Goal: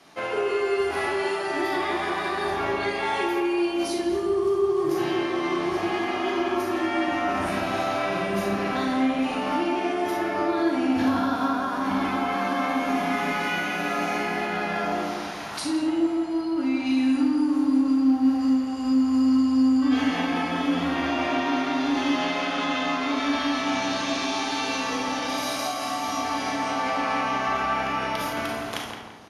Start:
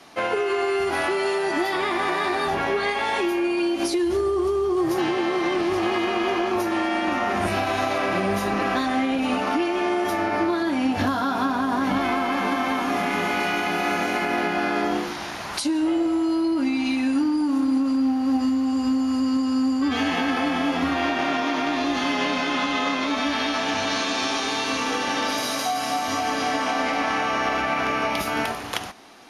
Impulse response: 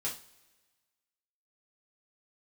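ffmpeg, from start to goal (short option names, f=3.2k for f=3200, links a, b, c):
-filter_complex "[0:a]asettb=1/sr,asplit=3[a][b][c];[a]atrim=end=16.124[d];[b]atrim=start=16.12:end=16.87,asetpts=PTS-STARTPTS,afade=t=in:d=0.004:c=qsin,afade=t=out:st=0.746:d=0.004:c=qsin,highshelf=f=5.7k:g=-5.5[e];[c]atrim=start=16.866[f];[d][e]acrossfade=d=0.004:c1=hsin:c2=qsin[g];[g][f]acrossfade=d=0.004:c1=qsin:c2=hsin,asplit=2[h][i];[i]adelay=169,lowpass=f=1.8k:p=1,volume=-3dB,asplit=2[j][k];[k]adelay=169,lowpass=f=1.8k:p=1,volume=0.46,asplit=2[l][m];[m]adelay=169,lowpass=f=1.8k:p=1,volume=0.46,asplit=2[n][o];[o]adelay=169,lowpass=f=1.8k:p=1,volume=0.46,asplit=2[p][q];[q]adelay=169,lowpass=f=1.8k:p=1,volume=0.46,asplit=2[r][s];[s]adelay=169,lowpass=f=1.8k:p=1,volume=0.46[t];[h][j][l][n][p][r][t]amix=inputs=7:normalize=0,asplit=2[u][v];[1:a]atrim=start_sample=2205,adelay=35[w];[v][w]afir=irnorm=-1:irlink=0,volume=-4dB[x];[u][x]amix=inputs=2:normalize=0,volume=-6dB"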